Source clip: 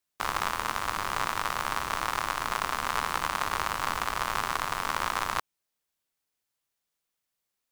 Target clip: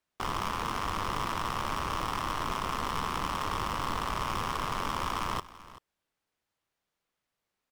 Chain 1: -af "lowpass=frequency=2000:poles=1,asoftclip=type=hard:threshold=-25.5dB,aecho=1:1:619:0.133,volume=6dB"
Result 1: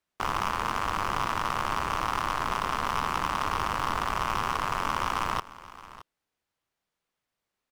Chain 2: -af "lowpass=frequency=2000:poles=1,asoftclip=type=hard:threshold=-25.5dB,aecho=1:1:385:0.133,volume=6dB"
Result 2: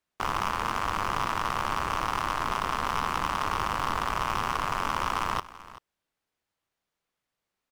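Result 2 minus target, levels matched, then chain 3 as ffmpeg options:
hard clipping: distortion −5 dB
-af "lowpass=frequency=2000:poles=1,asoftclip=type=hard:threshold=-32dB,aecho=1:1:385:0.133,volume=6dB"

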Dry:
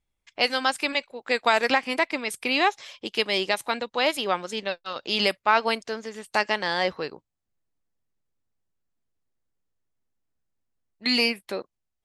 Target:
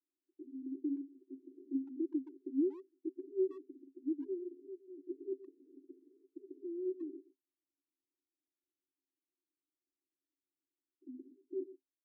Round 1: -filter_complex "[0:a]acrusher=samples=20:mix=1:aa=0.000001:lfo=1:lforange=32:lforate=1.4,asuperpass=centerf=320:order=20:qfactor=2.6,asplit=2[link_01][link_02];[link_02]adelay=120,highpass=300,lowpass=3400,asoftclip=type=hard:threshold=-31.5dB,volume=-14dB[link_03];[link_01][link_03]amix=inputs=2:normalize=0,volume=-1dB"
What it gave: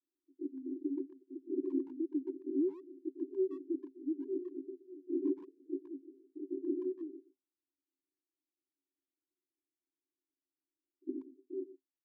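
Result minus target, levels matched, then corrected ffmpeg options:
sample-and-hold swept by an LFO: distortion +11 dB
-filter_complex "[0:a]acrusher=samples=4:mix=1:aa=0.000001:lfo=1:lforange=6.4:lforate=1.4,asuperpass=centerf=320:order=20:qfactor=2.6,asplit=2[link_01][link_02];[link_02]adelay=120,highpass=300,lowpass=3400,asoftclip=type=hard:threshold=-31.5dB,volume=-14dB[link_03];[link_01][link_03]amix=inputs=2:normalize=0,volume=-1dB"

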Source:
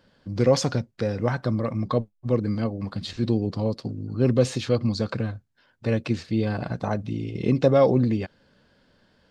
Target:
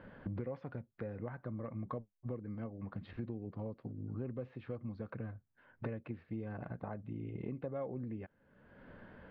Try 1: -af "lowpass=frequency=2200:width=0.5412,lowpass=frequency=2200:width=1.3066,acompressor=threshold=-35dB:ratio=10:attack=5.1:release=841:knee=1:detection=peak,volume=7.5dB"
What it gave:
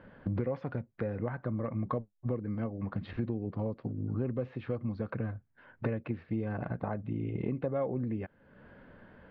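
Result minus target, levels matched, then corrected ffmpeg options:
downward compressor: peak gain reduction −8 dB
-af "lowpass=frequency=2200:width=0.5412,lowpass=frequency=2200:width=1.3066,acompressor=threshold=-44dB:ratio=10:attack=5.1:release=841:knee=1:detection=peak,volume=7.5dB"

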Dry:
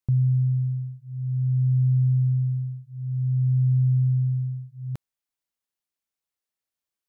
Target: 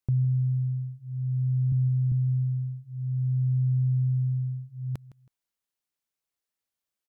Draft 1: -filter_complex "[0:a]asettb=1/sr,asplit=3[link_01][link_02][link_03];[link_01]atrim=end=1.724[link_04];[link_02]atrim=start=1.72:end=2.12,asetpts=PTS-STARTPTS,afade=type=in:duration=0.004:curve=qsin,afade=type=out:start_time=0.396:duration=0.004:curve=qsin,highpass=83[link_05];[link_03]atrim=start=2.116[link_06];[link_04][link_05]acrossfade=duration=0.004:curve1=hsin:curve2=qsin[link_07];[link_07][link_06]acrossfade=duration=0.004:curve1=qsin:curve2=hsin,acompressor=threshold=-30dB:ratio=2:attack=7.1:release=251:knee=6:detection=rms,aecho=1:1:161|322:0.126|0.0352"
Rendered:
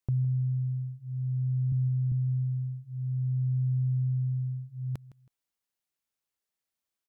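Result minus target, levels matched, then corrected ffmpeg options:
downward compressor: peak gain reduction +3 dB
-filter_complex "[0:a]asettb=1/sr,asplit=3[link_01][link_02][link_03];[link_01]atrim=end=1.724[link_04];[link_02]atrim=start=1.72:end=2.12,asetpts=PTS-STARTPTS,afade=type=in:duration=0.004:curve=qsin,afade=type=out:start_time=0.396:duration=0.004:curve=qsin,highpass=83[link_05];[link_03]atrim=start=2.116[link_06];[link_04][link_05]acrossfade=duration=0.004:curve1=hsin:curve2=qsin[link_07];[link_07][link_06]acrossfade=duration=0.004:curve1=qsin:curve2=hsin,acompressor=threshold=-23.5dB:ratio=2:attack=7.1:release=251:knee=6:detection=rms,aecho=1:1:161|322:0.126|0.0352"

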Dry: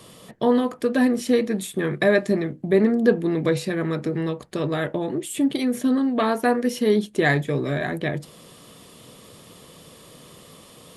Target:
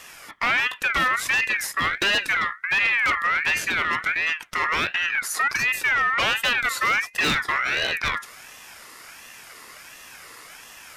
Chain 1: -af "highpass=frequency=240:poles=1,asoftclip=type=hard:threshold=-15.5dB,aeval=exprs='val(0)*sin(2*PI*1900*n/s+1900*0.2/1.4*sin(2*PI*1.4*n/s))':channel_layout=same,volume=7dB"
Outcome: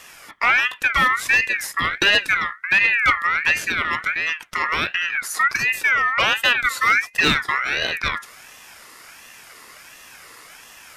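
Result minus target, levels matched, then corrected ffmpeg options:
hard clipping: distortion −9 dB
-af "highpass=frequency=240:poles=1,asoftclip=type=hard:threshold=-23dB,aeval=exprs='val(0)*sin(2*PI*1900*n/s+1900*0.2/1.4*sin(2*PI*1.4*n/s))':channel_layout=same,volume=7dB"

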